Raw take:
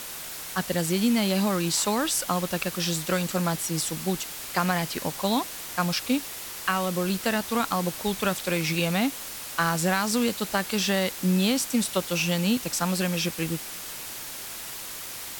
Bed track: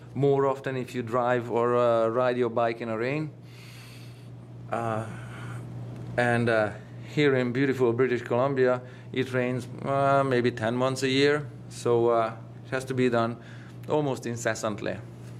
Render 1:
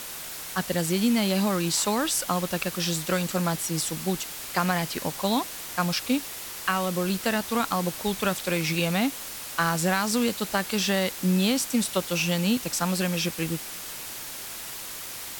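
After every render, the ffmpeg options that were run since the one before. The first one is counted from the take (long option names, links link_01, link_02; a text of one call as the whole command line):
ffmpeg -i in.wav -af anull out.wav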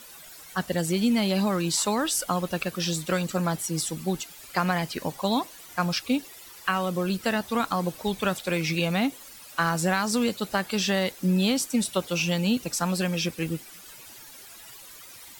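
ffmpeg -i in.wav -af "afftdn=noise_reduction=13:noise_floor=-38" out.wav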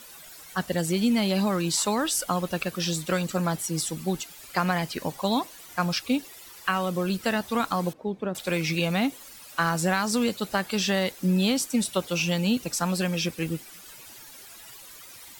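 ffmpeg -i in.wav -filter_complex "[0:a]asettb=1/sr,asplit=3[link_01][link_02][link_03];[link_01]atrim=end=7.934[link_04];[link_02]atrim=start=7.93:end=8.35,asetpts=PTS-STARTPTS,afade=type=in:duration=0.004:curve=qsin,afade=type=out:start_time=0.416:duration=0.004:curve=qsin,bandpass=frequency=320:width_type=q:width=0.9[link_05];[link_03]atrim=start=8.346[link_06];[link_04][link_05]acrossfade=duration=0.004:curve1=hsin:curve2=qsin[link_07];[link_07][link_06]acrossfade=duration=0.004:curve1=qsin:curve2=hsin" out.wav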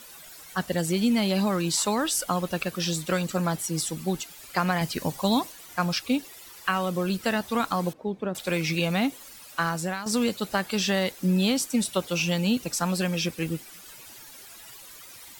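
ffmpeg -i in.wav -filter_complex "[0:a]asettb=1/sr,asplit=3[link_01][link_02][link_03];[link_01]atrim=end=4.814[link_04];[link_02]atrim=start=4.81:end=5.52,asetpts=PTS-STARTPTS,afade=type=in:duration=0.004:curve=qsin,afade=type=out:start_time=0.706:duration=0.004:curve=qsin,bass=frequency=250:gain=5,treble=frequency=4000:gain=4[link_05];[link_03]atrim=start=5.516[link_06];[link_04][link_05]acrossfade=duration=0.004:curve1=hsin:curve2=qsin[link_07];[link_07][link_06]acrossfade=duration=0.004:curve1=qsin:curve2=hsin,asplit=2[link_08][link_09];[link_08]atrim=end=10.06,asetpts=PTS-STARTPTS,afade=type=out:start_time=9.27:duration=0.79:curve=qsin:silence=0.281838[link_10];[link_09]atrim=start=10.06,asetpts=PTS-STARTPTS,afade=type=in:duration=0.004:curve=hsin:silence=0.281838[link_11];[link_10][link_11]concat=n=2:v=0:a=1" out.wav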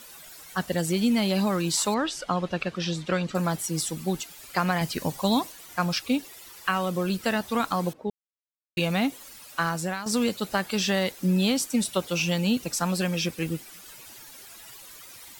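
ffmpeg -i in.wav -filter_complex "[0:a]asettb=1/sr,asplit=3[link_01][link_02][link_03];[link_01]atrim=end=1.944[link_04];[link_02]atrim=start=1.94:end=3.35,asetpts=PTS-STARTPTS,afade=type=in:duration=0.004:curve=qsin,afade=type=out:start_time=1.406:duration=0.004:curve=qsin,lowpass=4300[link_05];[link_03]atrim=start=3.346[link_06];[link_04][link_05]acrossfade=duration=0.004:curve1=hsin:curve2=qsin[link_07];[link_07][link_06]acrossfade=duration=0.004:curve1=qsin:curve2=hsin,asplit=3[link_08][link_09][link_10];[link_08]atrim=end=8.1,asetpts=PTS-STARTPTS,afade=type=out:start_time=8.096:duration=0.004:curve=hsin[link_11];[link_09]atrim=start=8.1:end=8.77,asetpts=PTS-STARTPTS,volume=0[link_12];[link_10]atrim=start=8.77,asetpts=PTS-STARTPTS,afade=type=in:duration=0.004:curve=hsin[link_13];[link_11][link_12][link_13]concat=n=3:v=0:a=1" out.wav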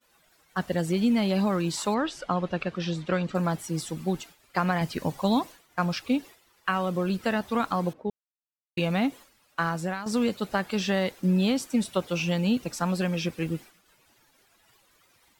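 ffmpeg -i in.wav -af "agate=range=-33dB:threshold=-37dB:ratio=3:detection=peak,highshelf=frequency=3900:gain=-11" out.wav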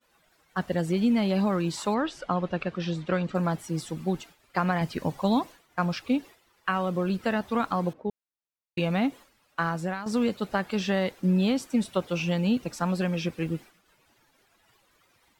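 ffmpeg -i in.wav -af "highshelf=frequency=4100:gain=-6" out.wav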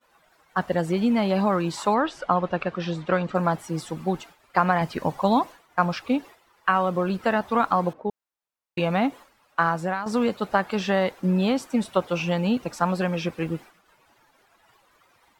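ffmpeg -i in.wav -af "equalizer=frequency=940:width_type=o:width=2:gain=8" out.wav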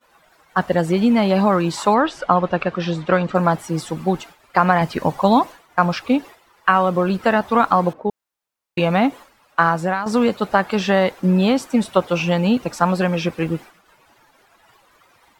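ffmpeg -i in.wav -af "volume=6dB,alimiter=limit=-1dB:level=0:latency=1" out.wav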